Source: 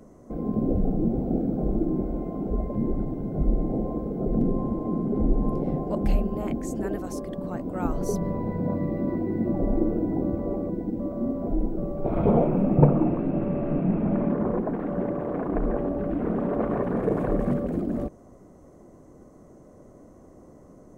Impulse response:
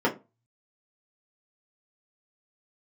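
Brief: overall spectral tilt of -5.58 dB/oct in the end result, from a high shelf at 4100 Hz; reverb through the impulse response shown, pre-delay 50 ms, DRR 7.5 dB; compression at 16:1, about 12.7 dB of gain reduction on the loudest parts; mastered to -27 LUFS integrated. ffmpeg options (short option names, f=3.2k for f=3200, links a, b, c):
-filter_complex "[0:a]highshelf=f=4.1k:g=-4,acompressor=threshold=-24dB:ratio=16,asplit=2[a][b];[1:a]atrim=start_sample=2205,adelay=50[c];[b][c]afir=irnorm=-1:irlink=0,volume=-22dB[d];[a][d]amix=inputs=2:normalize=0,volume=2dB"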